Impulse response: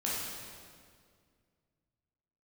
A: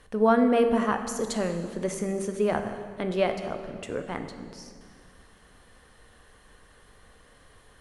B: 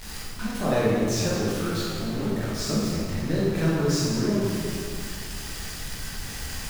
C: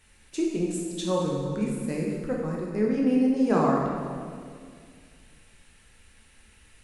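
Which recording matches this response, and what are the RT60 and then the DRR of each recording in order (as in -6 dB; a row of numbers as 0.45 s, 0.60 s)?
B; 2.1 s, 2.1 s, 2.1 s; 6.5 dB, -7.0 dB, -2.5 dB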